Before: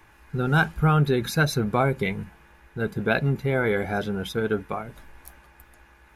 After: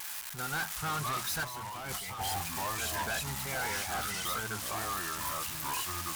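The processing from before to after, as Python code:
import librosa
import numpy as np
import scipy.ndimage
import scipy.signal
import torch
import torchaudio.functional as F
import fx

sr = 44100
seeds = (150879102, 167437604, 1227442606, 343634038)

y = x + 0.5 * 10.0 ** (-19.5 / 20.0) * np.diff(np.sign(x), prepend=np.sign(x[:1]))
y = fx.vibrato(y, sr, rate_hz=0.37, depth_cents=9.9)
y = fx.echo_pitch(y, sr, ms=382, semitones=-4, count=3, db_per_echo=-3.0)
y = fx.low_shelf_res(y, sr, hz=580.0, db=-12.0, q=1.5)
y = np.clip(y, -10.0 ** (-25.5 / 20.0), 10.0 ** (-25.5 / 20.0))
y = fx.over_compress(y, sr, threshold_db=-33.0, ratio=-1.0, at=(1.43, 2.19), fade=0.02)
y = y * librosa.db_to_amplitude(-5.5)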